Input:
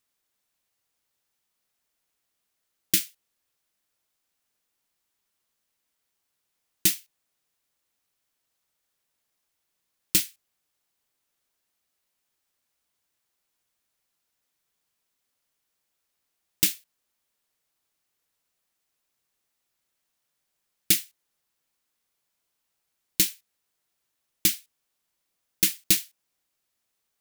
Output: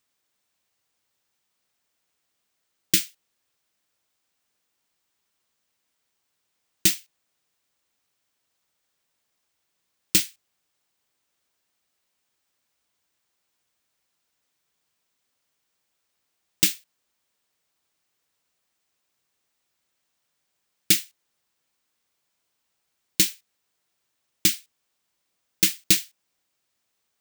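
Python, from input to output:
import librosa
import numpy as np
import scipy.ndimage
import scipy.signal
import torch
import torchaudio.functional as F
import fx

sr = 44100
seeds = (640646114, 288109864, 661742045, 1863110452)

y = scipy.signal.sosfilt(scipy.signal.butter(2, 50.0, 'highpass', fs=sr, output='sos'), x)
y = fx.peak_eq(y, sr, hz=12000.0, db=-13.0, octaves=0.27)
y = y * 10.0 ** (3.5 / 20.0)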